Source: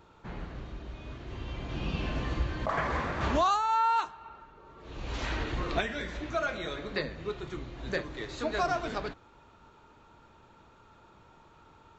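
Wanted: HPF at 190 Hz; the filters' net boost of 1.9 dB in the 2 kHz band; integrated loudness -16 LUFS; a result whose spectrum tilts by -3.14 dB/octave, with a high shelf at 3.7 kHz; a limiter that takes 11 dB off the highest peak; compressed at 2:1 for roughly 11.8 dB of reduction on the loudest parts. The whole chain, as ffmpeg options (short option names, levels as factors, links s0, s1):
-af "highpass=190,equalizer=f=2000:t=o:g=4.5,highshelf=f=3700:g=-8,acompressor=threshold=0.00562:ratio=2,volume=31.6,alimiter=limit=0.473:level=0:latency=1"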